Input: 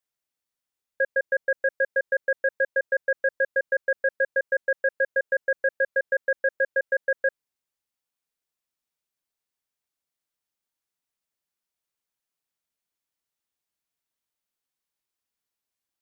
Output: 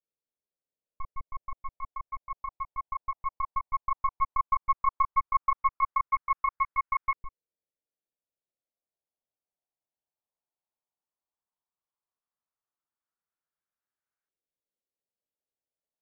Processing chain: ring modulator 540 Hz; LFO low-pass saw up 0.14 Hz 480–1600 Hz; trim -3.5 dB

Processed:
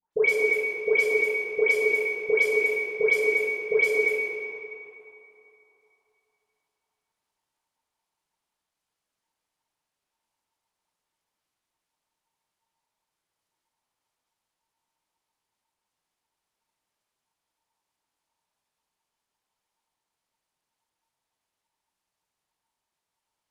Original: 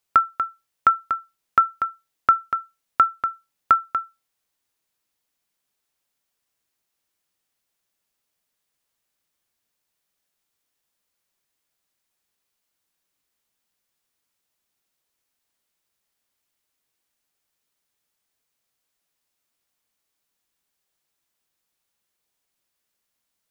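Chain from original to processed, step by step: CVSD coder 64 kbps; bass shelf 130 Hz +11.5 dB; reverberation RT60 2.9 s, pre-delay 6 ms, DRR -6.5 dB; ring modulator 910 Hz; phase dispersion highs, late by 135 ms, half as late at 1.8 kHz; trim -4.5 dB

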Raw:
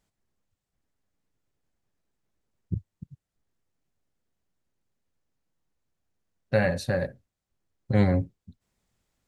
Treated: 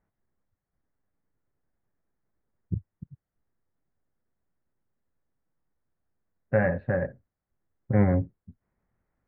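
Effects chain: steep low-pass 2 kHz 36 dB/octave

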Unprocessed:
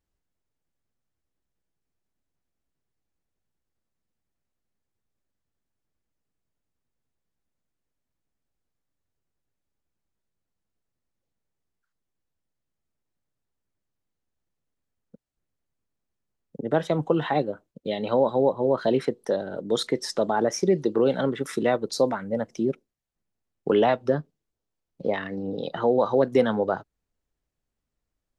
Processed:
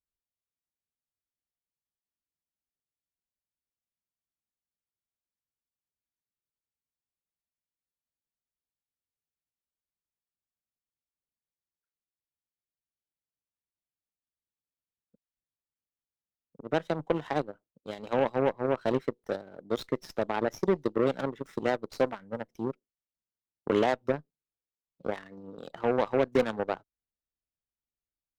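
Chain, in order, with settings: Chebyshev shaper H 5 -20 dB, 7 -15 dB, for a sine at -7 dBFS; sliding maximum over 3 samples; trim -5.5 dB

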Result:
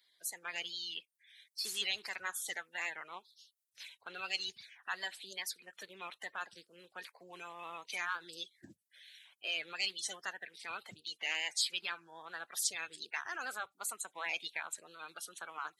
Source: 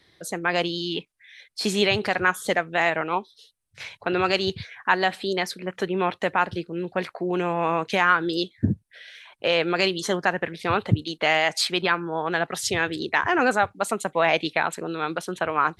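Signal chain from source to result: coarse spectral quantiser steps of 30 dB; wow and flutter 37 cents; differentiator; trim -4 dB

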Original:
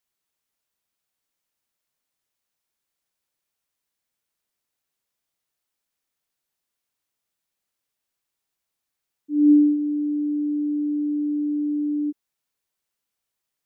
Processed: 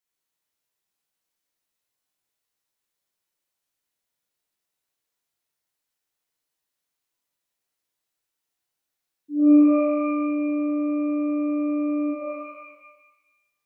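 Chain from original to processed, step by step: pitch-shifted reverb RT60 1.1 s, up +12 st, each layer -2 dB, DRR -2 dB; trim -5.5 dB

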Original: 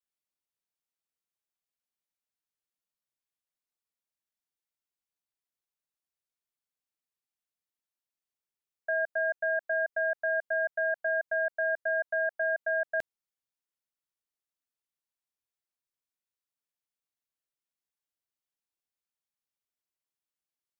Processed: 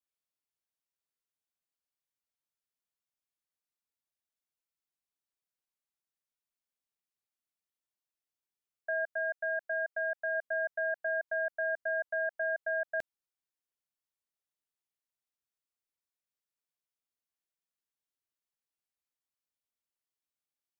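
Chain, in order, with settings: 9.04–10.35 s: bass shelf 270 Hz -9 dB; trim -3.5 dB

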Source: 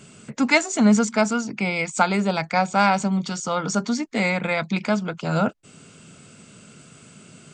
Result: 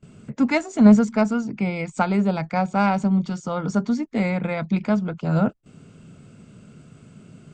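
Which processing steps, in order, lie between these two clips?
gate with hold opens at -38 dBFS; tilt EQ -3 dB/octave; Chebyshev shaper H 3 -19 dB, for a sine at -0.5 dBFS; trim -1 dB

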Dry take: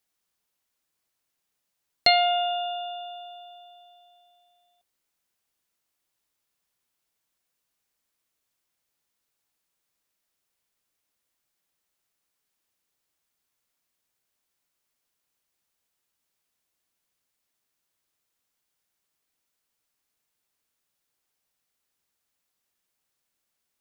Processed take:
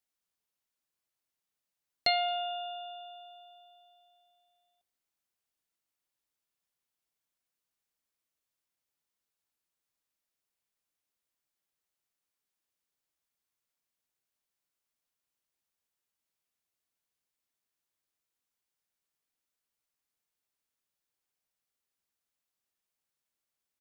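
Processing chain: echo from a far wall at 38 m, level -29 dB; trim -8.5 dB

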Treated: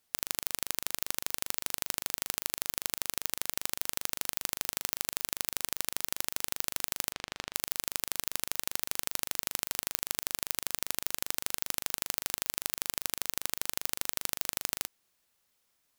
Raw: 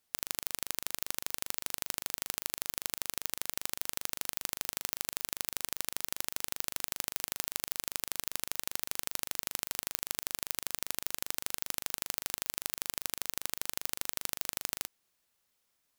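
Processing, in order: 7.12–7.54 s: low-pass 4 kHz 12 dB/octave; trim +2.5 dB

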